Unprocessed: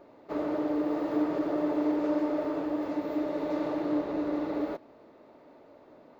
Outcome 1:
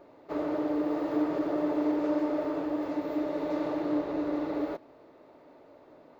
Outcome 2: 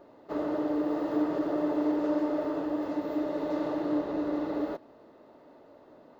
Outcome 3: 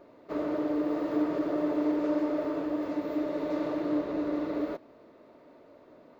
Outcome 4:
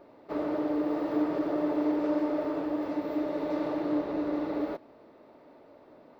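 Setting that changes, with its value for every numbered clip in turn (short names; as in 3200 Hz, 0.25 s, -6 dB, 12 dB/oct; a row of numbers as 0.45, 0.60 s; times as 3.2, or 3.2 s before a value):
notch, frequency: 220, 2300, 820, 6700 Hz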